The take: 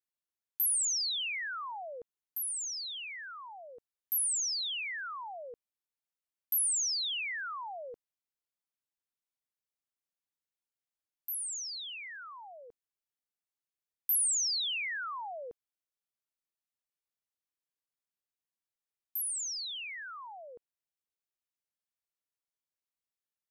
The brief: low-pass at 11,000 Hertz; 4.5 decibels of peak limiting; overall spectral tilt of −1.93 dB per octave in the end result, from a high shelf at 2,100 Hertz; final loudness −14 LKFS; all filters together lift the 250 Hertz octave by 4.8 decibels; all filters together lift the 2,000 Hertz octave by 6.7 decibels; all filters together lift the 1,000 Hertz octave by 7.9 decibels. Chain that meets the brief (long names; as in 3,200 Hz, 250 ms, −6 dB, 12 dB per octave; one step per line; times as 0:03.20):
low-pass filter 11,000 Hz
parametric band 250 Hz +6 dB
parametric band 1,000 Hz +7.5 dB
parametric band 2,000 Hz +3.5 dB
high-shelf EQ 2,100 Hz +4.5 dB
level +16 dB
brickwall limiter −11 dBFS